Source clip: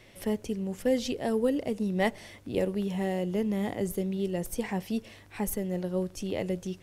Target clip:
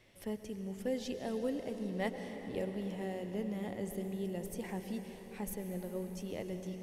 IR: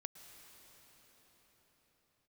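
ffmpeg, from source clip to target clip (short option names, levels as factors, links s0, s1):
-filter_complex "[1:a]atrim=start_sample=2205[s0];[0:a][s0]afir=irnorm=-1:irlink=0,volume=0.596"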